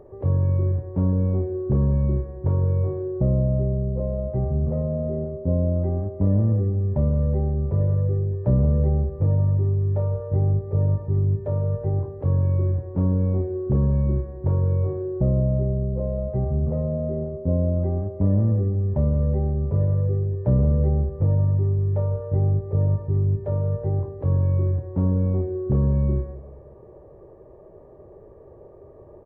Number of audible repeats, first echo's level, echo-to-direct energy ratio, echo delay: 3, -17.0 dB, -16.0 dB, 175 ms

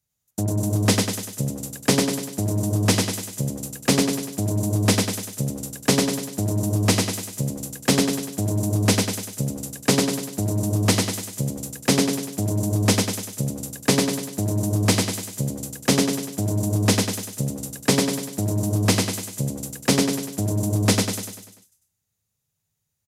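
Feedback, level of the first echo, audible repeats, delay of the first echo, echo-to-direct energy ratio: 51%, -3.0 dB, 6, 98 ms, -1.5 dB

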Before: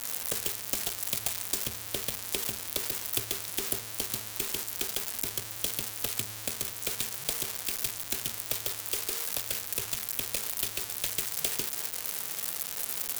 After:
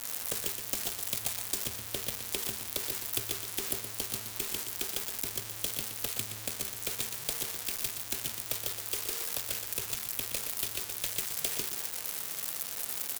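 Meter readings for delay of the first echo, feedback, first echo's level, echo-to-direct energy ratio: 121 ms, no regular repeats, -9.0 dB, -9.0 dB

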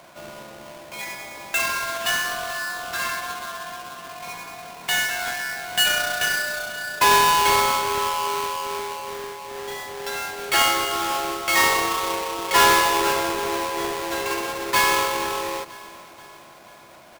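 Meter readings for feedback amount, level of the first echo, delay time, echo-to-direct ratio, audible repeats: 56%, -19.0 dB, 481 ms, -17.5 dB, 4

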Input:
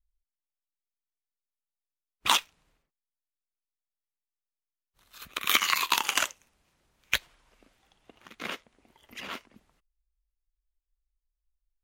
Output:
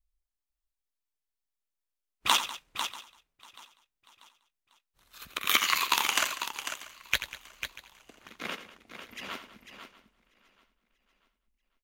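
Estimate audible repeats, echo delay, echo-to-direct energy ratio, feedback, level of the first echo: 8, 86 ms, -6.5 dB, no regular repeats, -11.5 dB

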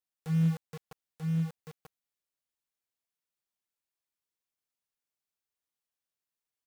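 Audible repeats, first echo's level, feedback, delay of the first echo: 1, -3.5 dB, no regular repeats, 938 ms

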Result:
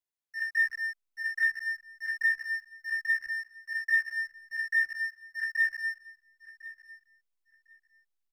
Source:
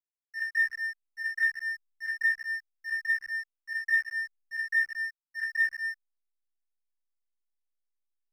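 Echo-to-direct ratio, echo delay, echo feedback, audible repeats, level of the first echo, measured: -18.0 dB, 1053 ms, 18%, 2, -18.0 dB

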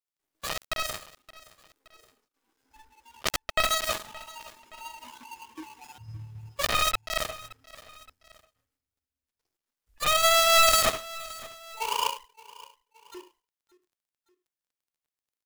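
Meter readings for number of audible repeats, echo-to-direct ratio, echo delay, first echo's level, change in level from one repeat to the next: 2, -19.0 dB, 571 ms, -20.0 dB, -6.0 dB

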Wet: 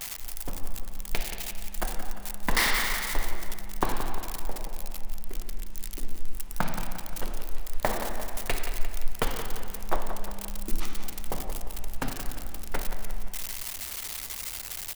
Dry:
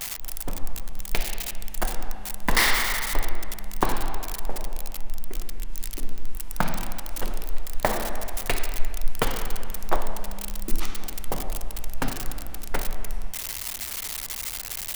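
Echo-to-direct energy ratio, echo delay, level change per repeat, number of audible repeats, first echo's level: -9.5 dB, 175 ms, -6.0 dB, 3, -10.5 dB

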